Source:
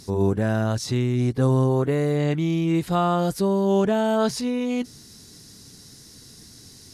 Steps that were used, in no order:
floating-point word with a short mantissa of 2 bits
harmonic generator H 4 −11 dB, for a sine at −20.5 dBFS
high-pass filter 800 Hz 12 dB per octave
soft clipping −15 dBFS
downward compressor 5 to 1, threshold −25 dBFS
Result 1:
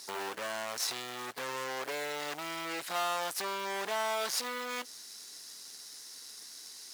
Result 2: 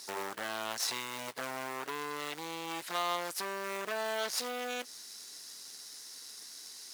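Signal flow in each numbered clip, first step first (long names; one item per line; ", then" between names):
harmonic generator, then soft clipping, then downward compressor, then floating-point word with a short mantissa, then high-pass filter
downward compressor, then harmonic generator, then floating-point word with a short mantissa, then soft clipping, then high-pass filter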